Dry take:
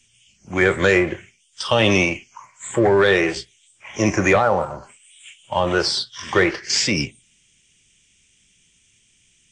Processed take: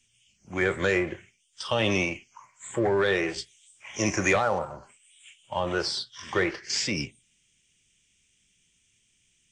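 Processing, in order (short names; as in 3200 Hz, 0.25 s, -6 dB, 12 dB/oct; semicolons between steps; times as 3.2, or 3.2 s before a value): 3.38–4.59 high shelf 2700 Hz +9 dB; gain -8.5 dB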